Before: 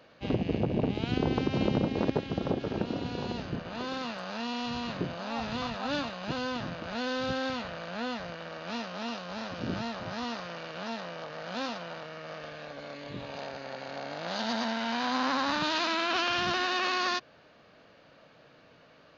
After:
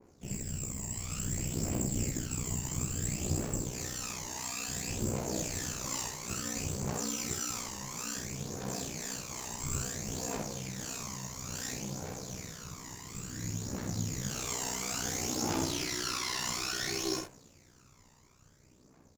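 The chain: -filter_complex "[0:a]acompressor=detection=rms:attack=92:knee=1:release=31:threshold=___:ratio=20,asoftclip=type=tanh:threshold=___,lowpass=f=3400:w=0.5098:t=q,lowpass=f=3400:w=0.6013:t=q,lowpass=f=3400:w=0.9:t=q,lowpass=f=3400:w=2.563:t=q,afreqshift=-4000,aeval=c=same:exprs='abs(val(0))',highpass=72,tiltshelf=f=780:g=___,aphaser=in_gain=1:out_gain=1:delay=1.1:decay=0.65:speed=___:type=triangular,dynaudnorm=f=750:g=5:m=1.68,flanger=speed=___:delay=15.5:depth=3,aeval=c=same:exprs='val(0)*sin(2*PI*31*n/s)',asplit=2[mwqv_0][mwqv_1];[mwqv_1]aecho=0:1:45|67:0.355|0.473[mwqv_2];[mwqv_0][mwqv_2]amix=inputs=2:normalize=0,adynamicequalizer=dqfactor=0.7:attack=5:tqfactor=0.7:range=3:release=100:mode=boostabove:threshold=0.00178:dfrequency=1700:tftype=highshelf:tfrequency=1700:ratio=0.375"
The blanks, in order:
0.0251, 0.0501, 5.5, 0.58, 2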